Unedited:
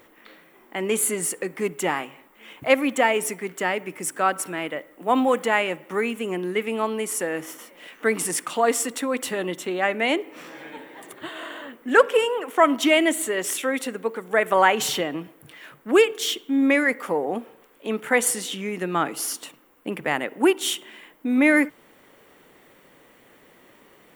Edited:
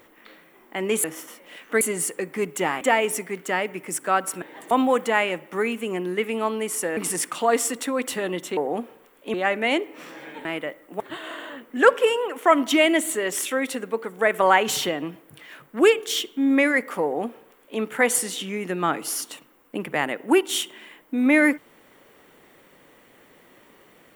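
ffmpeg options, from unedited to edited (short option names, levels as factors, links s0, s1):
-filter_complex "[0:a]asplit=11[s0][s1][s2][s3][s4][s5][s6][s7][s8][s9][s10];[s0]atrim=end=1.042[s11];[s1]atrim=start=7.348:end=8.122[s12];[s2]atrim=start=1.038:end=2.042[s13];[s3]atrim=start=2.928:end=4.542[s14];[s4]atrim=start=10.828:end=11.122[s15];[s5]atrim=start=5.088:end=7.352[s16];[s6]atrim=start=8.118:end=9.722[s17];[s7]atrim=start=17.148:end=17.922[s18];[s8]atrim=start=9.718:end=10.832[s19];[s9]atrim=start=4.538:end=5.092[s20];[s10]atrim=start=11.118[s21];[s11][s12]acrossfade=d=0.004:c1=hsin:c2=hsin[s22];[s22][s13]acrossfade=d=0.004:c1=hsin:c2=hsin[s23];[s23][s14]acrossfade=d=0.004:c1=hsin:c2=hsin[s24];[s24][s15]acrossfade=d=0.004:c1=hsin:c2=hsin[s25];[s25][s16]acrossfade=d=0.004:c1=hsin:c2=hsin[s26];[s26][s17]acrossfade=d=0.004:c1=hsin:c2=hsin[s27];[s27][s18]acrossfade=d=0.004:c1=hsin:c2=hsin[s28];[s28][s19]acrossfade=d=0.004:c1=hsin:c2=hsin[s29];[s29][s20]acrossfade=d=0.004:c1=hsin:c2=hsin[s30];[s30][s21]acrossfade=d=0.004:c1=hsin:c2=hsin"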